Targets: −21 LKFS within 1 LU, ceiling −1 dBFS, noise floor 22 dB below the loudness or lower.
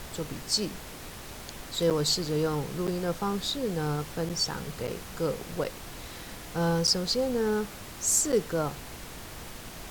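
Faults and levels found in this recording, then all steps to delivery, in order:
number of dropouts 7; longest dropout 7.6 ms; background noise floor −43 dBFS; target noise floor −51 dBFS; integrated loudness −29.0 LKFS; sample peak −12.0 dBFS; target loudness −21.0 LKFS
→ repair the gap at 0:01.90/0:02.87/0:04.29/0:04.87/0:05.64/0:06.87/0:08.32, 7.6 ms
noise reduction from a noise print 8 dB
level +8 dB

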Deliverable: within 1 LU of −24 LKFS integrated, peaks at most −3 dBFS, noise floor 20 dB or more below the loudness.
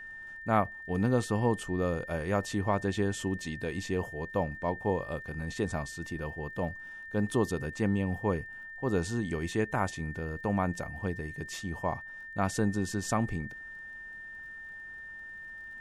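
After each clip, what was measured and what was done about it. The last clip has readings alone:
crackle rate 31 per second; interfering tone 1,800 Hz; level of the tone −42 dBFS; integrated loudness −33.0 LKFS; sample peak −13.5 dBFS; target loudness −24.0 LKFS
→ click removal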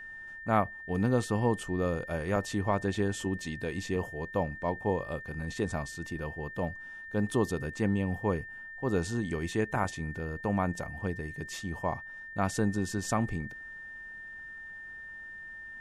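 crackle rate 0 per second; interfering tone 1,800 Hz; level of the tone −42 dBFS
→ notch filter 1,800 Hz, Q 30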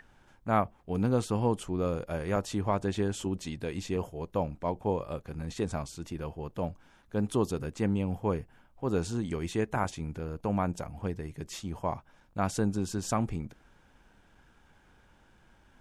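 interfering tone none found; integrated loudness −33.0 LKFS; sample peak −13.5 dBFS; target loudness −24.0 LKFS
→ level +9 dB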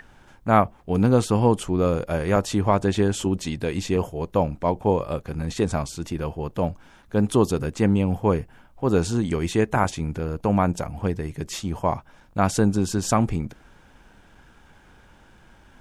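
integrated loudness −24.0 LKFS; sample peak −4.5 dBFS; background noise floor −54 dBFS

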